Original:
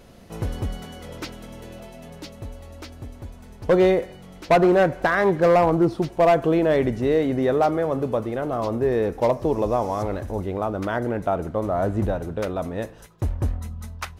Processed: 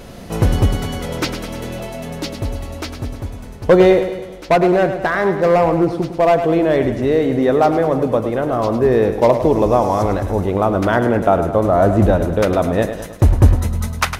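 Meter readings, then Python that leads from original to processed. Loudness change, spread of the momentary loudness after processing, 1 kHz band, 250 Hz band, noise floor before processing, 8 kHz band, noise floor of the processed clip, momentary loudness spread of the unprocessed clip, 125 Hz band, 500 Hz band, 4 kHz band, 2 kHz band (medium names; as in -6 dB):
+6.0 dB, 14 LU, +6.0 dB, +6.5 dB, -44 dBFS, no reading, -33 dBFS, 22 LU, +10.0 dB, +6.5 dB, +9.0 dB, +5.5 dB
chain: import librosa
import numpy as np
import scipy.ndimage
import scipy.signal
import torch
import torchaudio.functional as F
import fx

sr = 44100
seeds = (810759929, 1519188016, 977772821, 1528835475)

p1 = fx.rider(x, sr, range_db=10, speed_s=2.0)
p2 = p1 + fx.echo_feedback(p1, sr, ms=105, feedback_pct=54, wet_db=-10, dry=0)
y = F.gain(torch.from_numpy(p2), 5.5).numpy()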